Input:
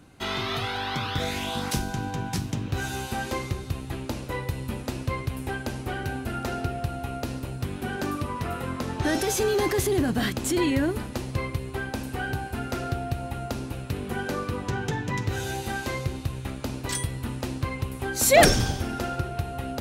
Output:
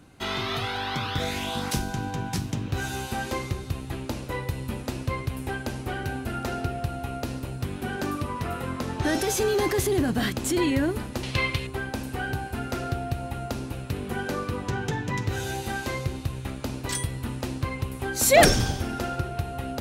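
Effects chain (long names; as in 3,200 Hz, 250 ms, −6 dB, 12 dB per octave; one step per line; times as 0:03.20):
0:11.23–0:11.67: parametric band 3,100 Hz +14.5 dB 2 octaves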